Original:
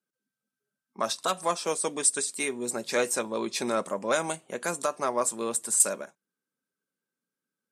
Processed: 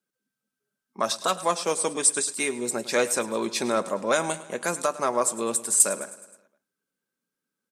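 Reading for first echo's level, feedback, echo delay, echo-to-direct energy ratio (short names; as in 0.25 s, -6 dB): -17.0 dB, 58%, 0.105 s, -15.0 dB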